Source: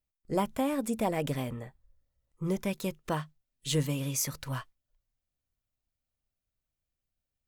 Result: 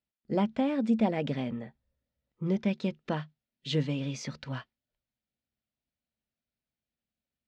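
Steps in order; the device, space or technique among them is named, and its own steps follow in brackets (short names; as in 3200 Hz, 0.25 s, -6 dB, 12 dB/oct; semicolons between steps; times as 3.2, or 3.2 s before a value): guitar cabinet (speaker cabinet 85–4600 Hz, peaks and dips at 100 Hz -9 dB, 220 Hz +9 dB, 1100 Hz -7 dB)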